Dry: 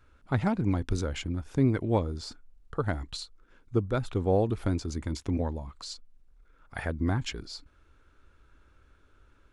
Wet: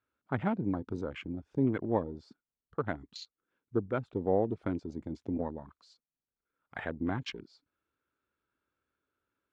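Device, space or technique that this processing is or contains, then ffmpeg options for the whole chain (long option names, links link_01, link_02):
over-cleaned archive recording: -af "highpass=160,lowpass=5200,afwtdn=0.00891,volume=-2.5dB"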